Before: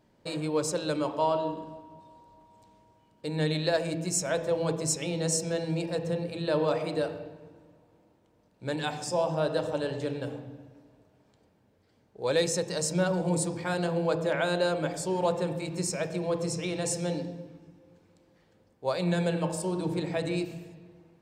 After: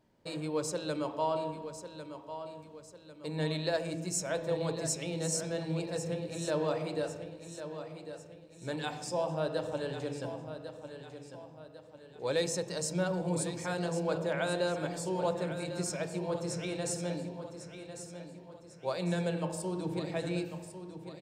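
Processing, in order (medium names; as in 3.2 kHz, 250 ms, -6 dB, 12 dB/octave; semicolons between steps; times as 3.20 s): feedback delay 1099 ms, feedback 43%, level -10.5 dB; trim -5 dB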